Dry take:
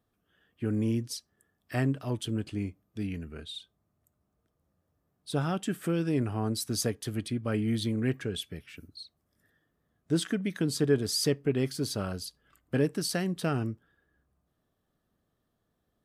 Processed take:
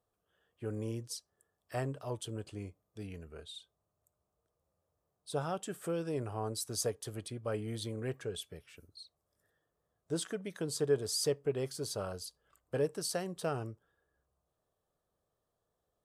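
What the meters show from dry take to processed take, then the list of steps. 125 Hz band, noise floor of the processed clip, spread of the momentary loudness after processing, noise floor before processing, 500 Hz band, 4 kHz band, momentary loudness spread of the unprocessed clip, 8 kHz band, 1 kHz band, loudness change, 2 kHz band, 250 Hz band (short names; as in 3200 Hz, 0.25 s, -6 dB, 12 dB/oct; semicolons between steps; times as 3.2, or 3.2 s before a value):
-9.5 dB, -85 dBFS, 16 LU, -78 dBFS, -3.0 dB, -6.0 dB, 14 LU, -3.0 dB, -3.0 dB, -6.5 dB, -8.5 dB, -12.0 dB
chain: graphic EQ 250/500/1000/2000/8000 Hz -9/+8/+5/-4/+6 dB; gain -7.5 dB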